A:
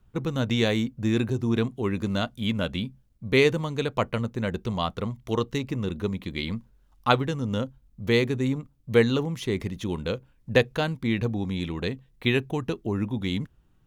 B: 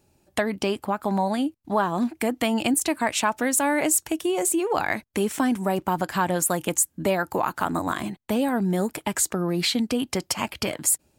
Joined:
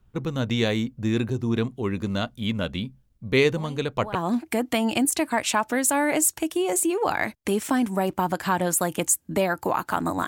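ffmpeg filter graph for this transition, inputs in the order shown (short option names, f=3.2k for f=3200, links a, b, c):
-filter_complex "[1:a]asplit=2[a][b];[0:a]apad=whole_dur=10.27,atrim=end=10.27,atrim=end=4.152[c];[b]atrim=start=1.838:end=7.96[d];[a]atrim=start=1.26:end=1.84,asetpts=PTS-STARTPTS,volume=-15dB,afade=t=in:d=0.004:c=hsin,afade=t=out:st=0.576:d=0.004:c=hsin,adelay=157437S[e];[c][d]acrossfade=d=0.004:c1=hsin:c2=hsin[f];[f][e]amix=inputs=2:normalize=0"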